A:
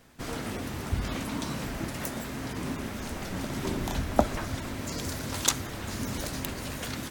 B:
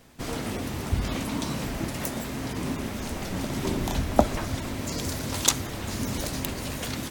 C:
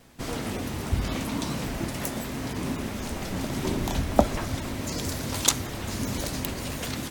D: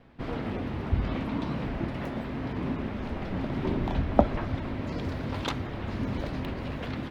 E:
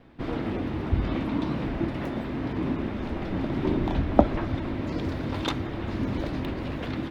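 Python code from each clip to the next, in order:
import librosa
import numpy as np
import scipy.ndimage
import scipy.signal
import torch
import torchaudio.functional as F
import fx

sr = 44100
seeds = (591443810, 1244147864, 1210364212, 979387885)

y1 = fx.peak_eq(x, sr, hz=1500.0, db=-3.5, octaves=0.77)
y1 = y1 * librosa.db_to_amplitude(3.5)
y2 = fx.vibrato(y1, sr, rate_hz=7.3, depth_cents=49.0)
y3 = fx.air_absorb(y2, sr, metres=380.0)
y4 = fx.small_body(y3, sr, hz=(320.0, 3600.0), ring_ms=45, db=7)
y4 = y4 * librosa.db_to_amplitude(1.5)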